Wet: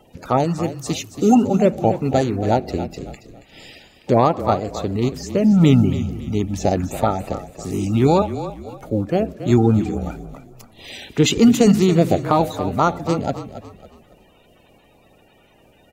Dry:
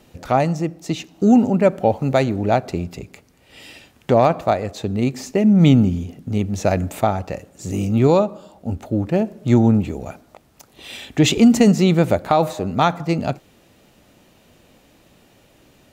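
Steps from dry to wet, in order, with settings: coarse spectral quantiser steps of 30 dB; 0.63–1.35 s: treble shelf 4.9 kHz +11 dB; 8.22–8.82 s: high-pass 580 Hz; on a send: frequency-shifting echo 277 ms, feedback 36%, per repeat -31 Hz, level -12 dB

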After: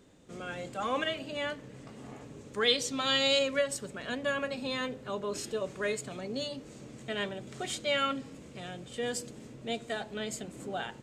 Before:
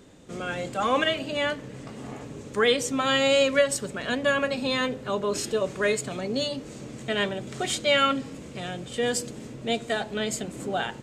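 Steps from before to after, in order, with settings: 2.61–3.39 s: peaking EQ 4.2 kHz +12 dB 0.91 oct; trim -8 dB

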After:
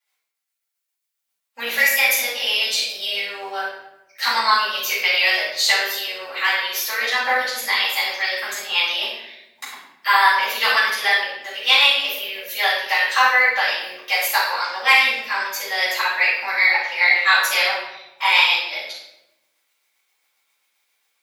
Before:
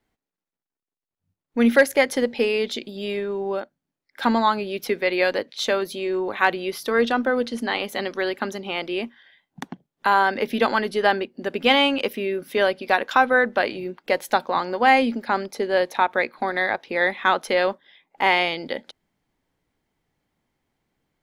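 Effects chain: octave divider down 2 oct, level -1 dB; high-pass 800 Hz 12 dB/octave; tilt EQ +4 dB/octave; level rider gain up to 5 dB; rotary cabinet horn 7.5 Hz; formant shift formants +2 st; simulated room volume 310 m³, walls mixed, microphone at 6.4 m; trim -10.5 dB

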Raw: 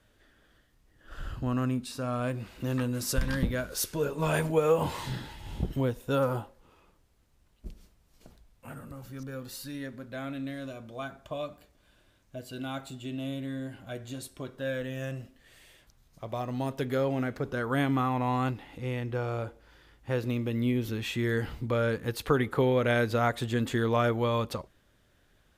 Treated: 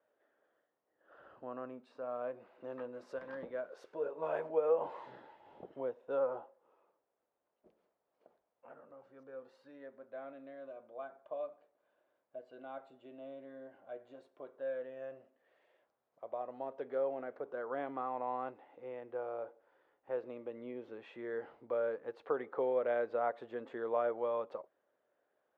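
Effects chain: ladder band-pass 680 Hz, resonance 35%; trim +3.5 dB

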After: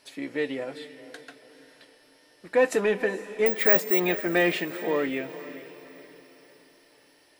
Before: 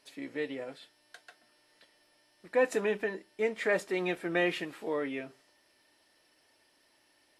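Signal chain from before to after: in parallel at -7 dB: hard clipper -26 dBFS, distortion -11 dB; on the sum: wow and flutter 23 cents; 3.46–4.00 s: careless resampling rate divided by 2×, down filtered, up zero stuff; echo that smears into a reverb 458 ms, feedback 44%, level -14 dB; trim +3.5 dB

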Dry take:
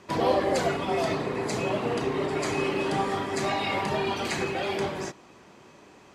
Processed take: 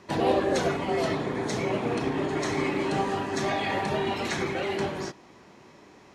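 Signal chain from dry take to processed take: formant shift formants -2 st

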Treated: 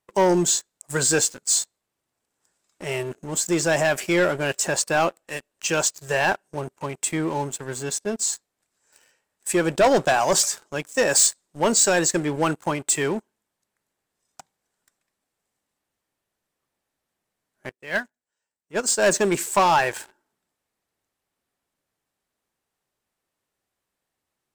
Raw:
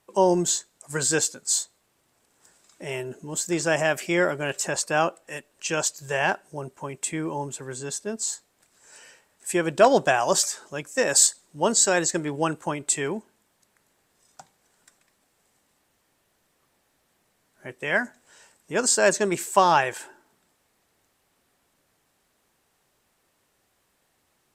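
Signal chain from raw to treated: waveshaping leveller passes 3; 17.69–19.06 s: upward expansion 2.5:1, over -21 dBFS; trim -7 dB

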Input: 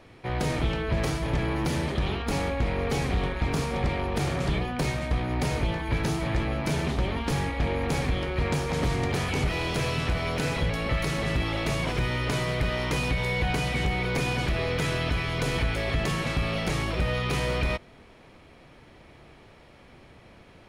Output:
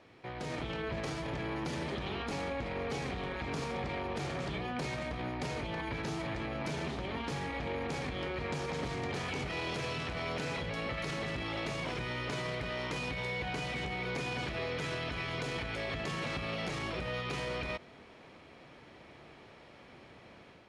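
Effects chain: peak limiter -26 dBFS, peak gain reduction 8.5 dB; high-pass 170 Hz 6 dB/octave; level rider gain up to 5 dB; low-pass 7.3 kHz 12 dB/octave; trim -6 dB

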